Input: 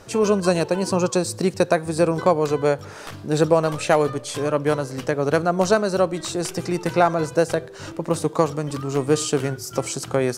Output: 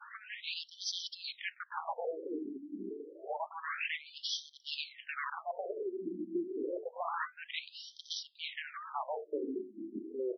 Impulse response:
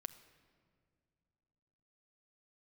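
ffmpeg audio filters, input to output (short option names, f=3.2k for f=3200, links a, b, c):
-filter_complex "[0:a]adynamicequalizer=threshold=0.0282:dfrequency=970:dqfactor=1.3:tfrequency=970:tqfactor=1.3:attack=5:release=100:ratio=0.375:range=1.5:mode=cutabove:tftype=bell,areverse,acompressor=threshold=-24dB:ratio=12,areverse,tremolo=f=2.1:d=0.8,aeval=exprs='0.02*(abs(mod(val(0)/0.02+3,4)-2)-1)':c=same,acrossover=split=150[a][b];[a]adelay=150[c];[c][b]amix=inputs=2:normalize=0,afftfilt=real='re*between(b*sr/1024,270*pow(4400/270,0.5+0.5*sin(2*PI*0.28*pts/sr))/1.41,270*pow(4400/270,0.5+0.5*sin(2*PI*0.28*pts/sr))*1.41)':imag='im*between(b*sr/1024,270*pow(4400/270,0.5+0.5*sin(2*PI*0.28*pts/sr))/1.41,270*pow(4400/270,0.5+0.5*sin(2*PI*0.28*pts/sr))*1.41)':win_size=1024:overlap=0.75,volume=9dB"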